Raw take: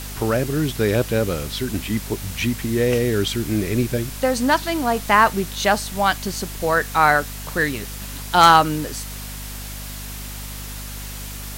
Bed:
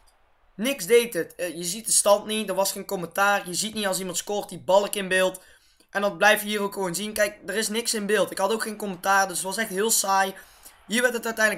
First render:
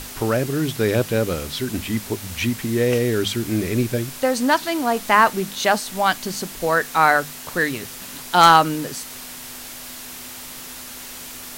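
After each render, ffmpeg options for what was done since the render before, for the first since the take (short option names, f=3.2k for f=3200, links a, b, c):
-af "bandreject=f=50:t=h:w=6,bandreject=f=100:t=h:w=6,bandreject=f=150:t=h:w=6,bandreject=f=200:t=h:w=6"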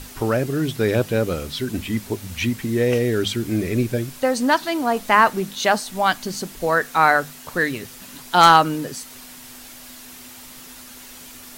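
-af "afftdn=nr=6:nf=-36"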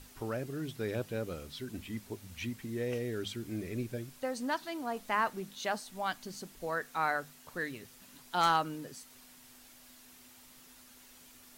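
-af "volume=-16dB"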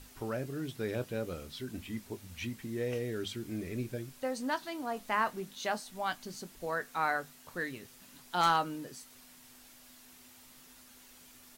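-filter_complex "[0:a]asplit=2[a][b];[b]adelay=23,volume=-13dB[c];[a][c]amix=inputs=2:normalize=0"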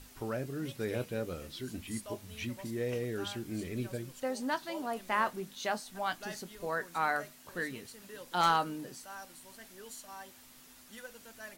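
-filter_complex "[1:a]volume=-26.5dB[a];[0:a][a]amix=inputs=2:normalize=0"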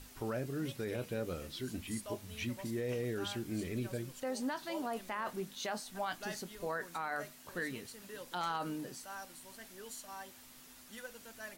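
-af "alimiter=level_in=4.5dB:limit=-24dB:level=0:latency=1:release=41,volume=-4.5dB"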